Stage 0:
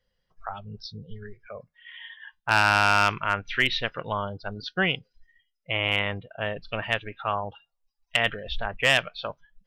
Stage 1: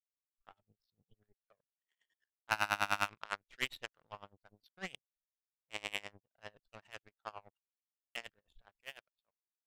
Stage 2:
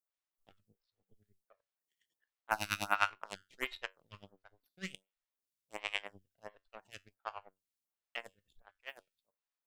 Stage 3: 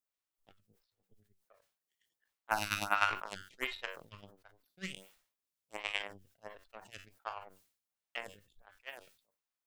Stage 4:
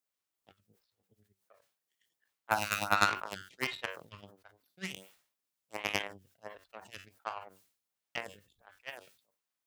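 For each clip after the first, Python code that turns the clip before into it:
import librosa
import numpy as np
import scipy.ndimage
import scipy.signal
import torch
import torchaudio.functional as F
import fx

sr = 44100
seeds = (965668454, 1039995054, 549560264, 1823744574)

y1 = fx.fade_out_tail(x, sr, length_s=1.84)
y1 = fx.power_curve(y1, sr, exponent=2.0)
y1 = y1 * 10.0 ** (-23 * (0.5 - 0.5 * np.cos(2.0 * np.pi * 9.9 * np.arange(len(y1)) / sr)) / 20.0)
y1 = y1 * 10.0 ** (-6.0 / 20.0)
y2 = fx.comb_fb(y1, sr, f0_hz=95.0, decay_s=0.23, harmonics='all', damping=0.0, mix_pct=40)
y2 = fx.stagger_phaser(y2, sr, hz=1.4)
y2 = y2 * 10.0 ** (7.0 / 20.0)
y3 = fx.sustainer(y2, sr, db_per_s=110.0)
y4 = fx.tracing_dist(y3, sr, depth_ms=0.12)
y4 = scipy.signal.sosfilt(scipy.signal.butter(2, 73.0, 'highpass', fs=sr, output='sos'), y4)
y4 = y4 * 10.0 ** (2.5 / 20.0)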